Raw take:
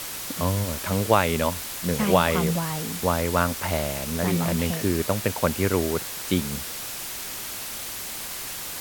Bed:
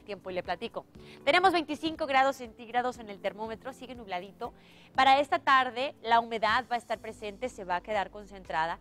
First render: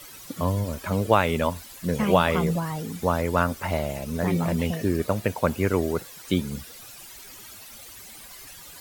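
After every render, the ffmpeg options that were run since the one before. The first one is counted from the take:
ffmpeg -i in.wav -af "afftdn=noise_reduction=14:noise_floor=-34" out.wav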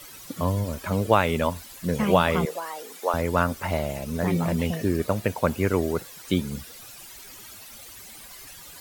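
ffmpeg -i in.wav -filter_complex "[0:a]asettb=1/sr,asplit=3[link_01][link_02][link_03];[link_01]atrim=end=2.454[link_04];[link_02]atrim=start=2.45:end=3.14,asetpts=PTS-STARTPTS,afade=type=in:duration=0.004:curve=qsin,afade=type=out:start_time=0.686:duration=0.004:curve=qsin,highpass=frequency=420:width=0.5412,highpass=frequency=420:width=1.3066[link_05];[link_03]atrim=start=3.136[link_06];[link_04][link_05]acrossfade=duration=0.004:curve1=hsin:curve2=qsin[link_07];[link_07][link_06]acrossfade=duration=0.004:curve1=qsin:curve2=hsin" out.wav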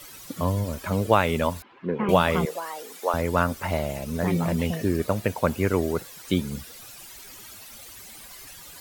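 ffmpeg -i in.wav -filter_complex "[0:a]asettb=1/sr,asplit=3[link_01][link_02][link_03];[link_01]atrim=end=1.624[link_04];[link_02]atrim=start=1.62:end=2.09,asetpts=PTS-STARTPTS,afade=type=in:duration=0.004:curve=qsin,afade=type=out:start_time=0.466:duration=0.004:curve=qsin,highpass=210,equalizer=frequency=380:width_type=q:width=4:gain=8,equalizer=frequency=620:width_type=q:width=4:gain=-8,equalizer=frequency=960:width_type=q:width=4:gain=5,equalizer=frequency=1900:width_type=q:width=4:gain=-5,lowpass=frequency=2400:width=0.5412,lowpass=frequency=2400:width=1.3066[link_05];[link_03]atrim=start=2.086[link_06];[link_04][link_05]acrossfade=duration=0.004:curve1=hsin:curve2=qsin[link_07];[link_07][link_06]acrossfade=duration=0.004:curve1=qsin:curve2=hsin" out.wav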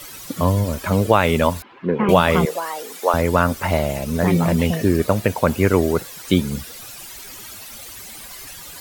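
ffmpeg -i in.wav -af "alimiter=level_in=7dB:limit=-1dB:release=50:level=0:latency=1" out.wav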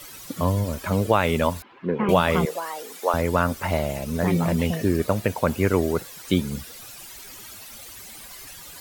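ffmpeg -i in.wav -af "volume=-4.5dB" out.wav

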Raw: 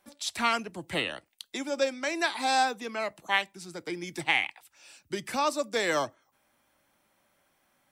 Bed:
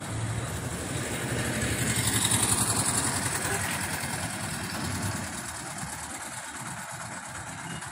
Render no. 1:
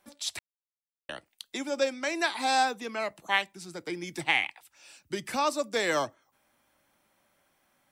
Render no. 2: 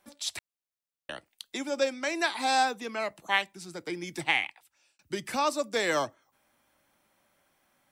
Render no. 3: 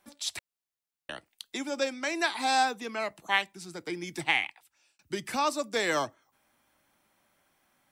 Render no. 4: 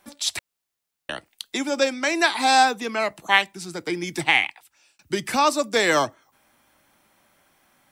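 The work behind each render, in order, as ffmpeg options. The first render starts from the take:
ffmpeg -i in.wav -filter_complex "[0:a]asplit=3[link_01][link_02][link_03];[link_01]atrim=end=0.39,asetpts=PTS-STARTPTS,afade=type=out:start_time=0.386:duration=0.004:curve=hsin[link_04];[link_02]atrim=start=0.39:end=1.09,asetpts=PTS-STARTPTS,volume=0[link_05];[link_03]atrim=start=1.09,asetpts=PTS-STARTPTS,afade=type=in:duration=0.004:curve=hsin[link_06];[link_04][link_05][link_06]concat=n=3:v=0:a=1" out.wav
ffmpeg -i in.wav -filter_complex "[0:a]asplit=2[link_01][link_02];[link_01]atrim=end=4.99,asetpts=PTS-STARTPTS,afade=type=out:start_time=4.28:duration=0.71[link_03];[link_02]atrim=start=4.99,asetpts=PTS-STARTPTS,afade=type=in:duration=0.004:curve=hsin[link_04];[link_03][link_04]concat=n=2:v=0:a=1" out.wav
ffmpeg -i in.wav -af "equalizer=frequency=550:width_type=o:width=0.26:gain=-3.5" out.wav
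ffmpeg -i in.wav -af "volume=8.5dB,alimiter=limit=-3dB:level=0:latency=1" out.wav

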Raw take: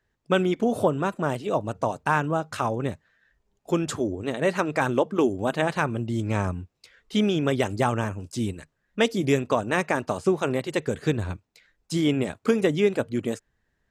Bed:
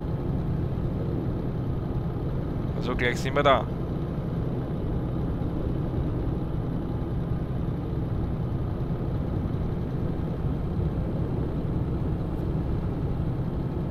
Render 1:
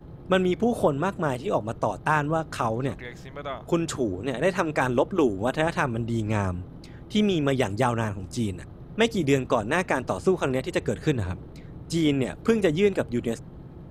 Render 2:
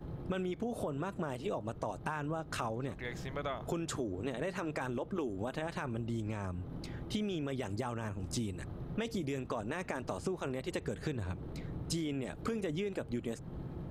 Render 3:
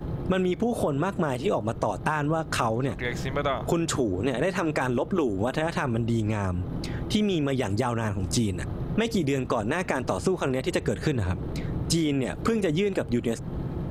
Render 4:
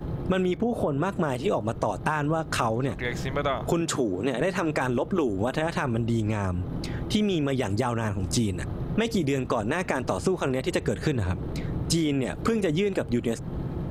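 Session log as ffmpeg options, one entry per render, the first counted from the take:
ffmpeg -i in.wav -i bed.wav -filter_complex "[1:a]volume=-14dB[link_01];[0:a][link_01]amix=inputs=2:normalize=0" out.wav
ffmpeg -i in.wav -af "alimiter=limit=-16dB:level=0:latency=1:release=23,acompressor=threshold=-33dB:ratio=10" out.wav
ffmpeg -i in.wav -af "volume=11.5dB" out.wav
ffmpeg -i in.wav -filter_complex "[0:a]asettb=1/sr,asplit=3[link_01][link_02][link_03];[link_01]atrim=end=0.574[link_04];[link_02]atrim=start=0.57:end=1.02,asetpts=PTS-STARTPTS,afade=type=in:duration=0.004:curve=qsin,afade=type=out:start_time=0.446:duration=0.004:curve=qsin,equalizer=frequency=8200:width=0.32:gain=-10.5[link_05];[link_03]atrim=start=1.016[link_06];[link_04][link_05]acrossfade=duration=0.004:curve1=hsin:curve2=qsin[link_07];[link_07][link_06]acrossfade=duration=0.004:curve1=qsin:curve2=hsin,asettb=1/sr,asplit=3[link_08][link_09][link_10];[link_08]atrim=end=3.814[link_11];[link_09]atrim=start=3.81:end=4.41,asetpts=PTS-STARTPTS,afade=type=in:duration=0.004:curve=qsin,afade=type=out:start_time=0.596:duration=0.004:curve=qsin,highpass=130[link_12];[link_10]atrim=start=4.406[link_13];[link_11][link_12]acrossfade=duration=0.004:curve1=hsin:curve2=qsin[link_14];[link_14][link_13]acrossfade=duration=0.004:curve1=qsin:curve2=hsin" out.wav

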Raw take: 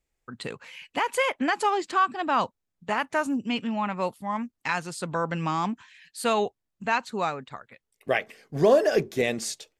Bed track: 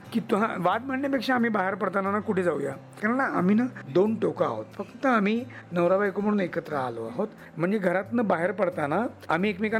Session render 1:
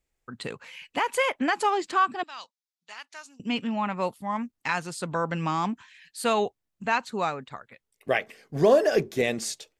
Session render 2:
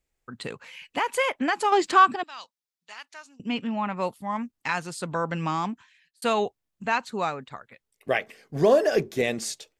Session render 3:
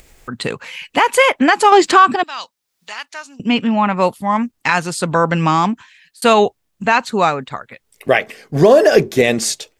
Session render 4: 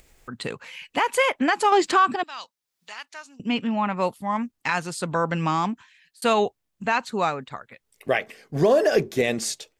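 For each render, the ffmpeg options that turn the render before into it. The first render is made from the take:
ffmpeg -i in.wav -filter_complex "[0:a]asettb=1/sr,asplit=3[link_01][link_02][link_03];[link_01]atrim=end=2.234[link_04];[link_02]atrim=start=2.23:end=3.4,asetpts=PTS-STARTPTS,afade=type=in:duration=0.004:curve=qsin,afade=type=out:start_time=1.166:duration=0.004:curve=qsin,bandpass=frequency=4900:width_type=q:width=1.8[link_05];[link_03]atrim=start=3.396[link_06];[link_04][link_05]acrossfade=duration=0.004:curve1=hsin:curve2=qsin[link_07];[link_07][link_06]acrossfade=duration=0.004:curve1=qsin:curve2=hsin" out.wav
ffmpeg -i in.wav -filter_complex "[0:a]asettb=1/sr,asplit=3[link_01][link_02][link_03];[link_01]atrim=end=1.724[link_04];[link_02]atrim=start=1.72:end=2.16,asetpts=PTS-STARTPTS,afade=type=in:duration=0.004:curve=qsin,afade=type=out:start_time=0.436:duration=0.004:curve=qsin,acontrast=63[link_05];[link_03]atrim=start=2.156[link_06];[link_04][link_05]acrossfade=duration=0.004:curve1=hsin:curve2=qsin[link_07];[link_07][link_06]acrossfade=duration=0.004:curve1=qsin:curve2=hsin,asettb=1/sr,asplit=3[link_08][link_09][link_10];[link_08]atrim=end=3.144[link_11];[link_09]atrim=start=3.14:end=3.97,asetpts=PTS-STARTPTS,afade=type=in:duration=0.004:curve=qsin,afade=type=out:start_time=0.826:duration=0.004:curve=qsin,highshelf=frequency=5000:gain=-7.5[link_12];[link_10]atrim=start=3.966[link_13];[link_11][link_12]acrossfade=duration=0.004:curve1=hsin:curve2=qsin[link_14];[link_14][link_13]acrossfade=duration=0.004:curve1=qsin:curve2=hsin,asplit=2[link_15][link_16];[link_15]atrim=end=6.22,asetpts=PTS-STARTPTS,afade=type=out:start_time=5.55:duration=0.67[link_17];[link_16]atrim=start=6.22,asetpts=PTS-STARTPTS,afade=type=in:duration=0.004:curve=hsin[link_18];[link_17][link_18]concat=n=2:v=0:a=1" out.wav
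ffmpeg -i in.wav -af "acompressor=mode=upward:threshold=-44dB:ratio=2.5,alimiter=level_in=13dB:limit=-1dB:release=50:level=0:latency=1" out.wav
ffmpeg -i in.wav -af "volume=-9dB" out.wav

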